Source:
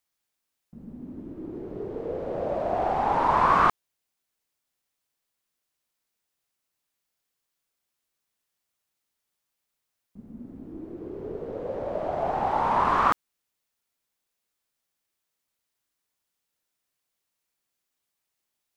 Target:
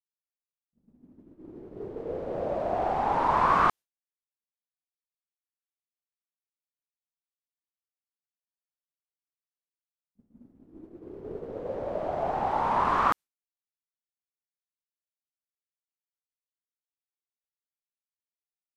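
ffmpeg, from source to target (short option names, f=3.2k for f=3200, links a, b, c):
-af "agate=range=-33dB:threshold=-31dB:ratio=3:detection=peak,dynaudnorm=f=600:g=5:m=8.5dB,aresample=32000,aresample=44100,volume=-8.5dB"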